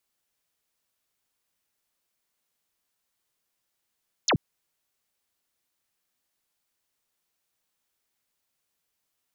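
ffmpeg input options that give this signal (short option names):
-f lavfi -i "aevalsrc='0.112*clip(t/0.002,0,1)*clip((0.08-t)/0.002,0,1)*sin(2*PI*7500*0.08/log(96/7500)*(exp(log(96/7500)*t/0.08)-1))':d=0.08:s=44100"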